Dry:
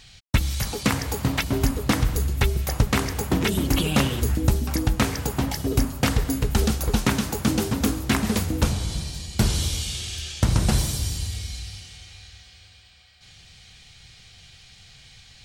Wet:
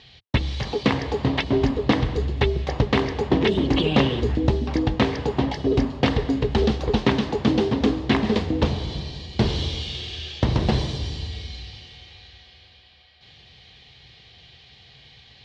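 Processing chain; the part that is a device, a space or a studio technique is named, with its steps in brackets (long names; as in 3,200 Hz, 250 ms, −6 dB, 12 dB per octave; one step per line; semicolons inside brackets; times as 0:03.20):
guitar cabinet (loudspeaker in its box 80–3,900 Hz, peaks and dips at 100 Hz −7 dB, 180 Hz −6 dB, 420 Hz +5 dB, 1,400 Hz −10 dB, 2,400 Hz −5 dB)
level +4 dB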